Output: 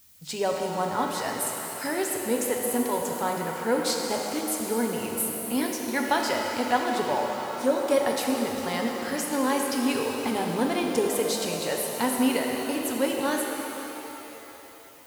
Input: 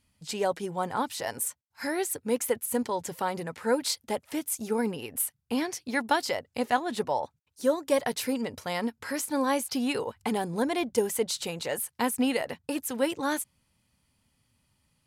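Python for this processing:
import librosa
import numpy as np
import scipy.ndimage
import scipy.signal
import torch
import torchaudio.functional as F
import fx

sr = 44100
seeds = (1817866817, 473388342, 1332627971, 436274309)

y = fx.dmg_noise_colour(x, sr, seeds[0], colour='blue', level_db=-57.0)
y = fx.rev_shimmer(y, sr, seeds[1], rt60_s=3.5, semitones=7, shimmer_db=-8, drr_db=1.0)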